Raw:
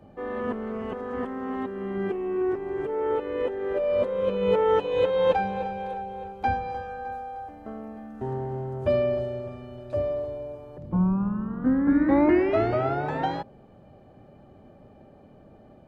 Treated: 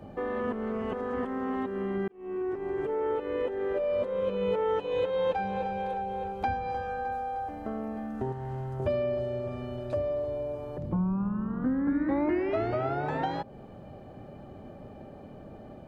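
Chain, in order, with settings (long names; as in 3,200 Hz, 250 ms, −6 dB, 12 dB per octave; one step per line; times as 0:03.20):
0:02.08–0:02.93: fade in
0:08.32–0:08.80: parametric band 350 Hz −12.5 dB 2.6 octaves
downward compressor 2.5 to 1, threshold −37 dBFS, peak gain reduction 14 dB
level +5.5 dB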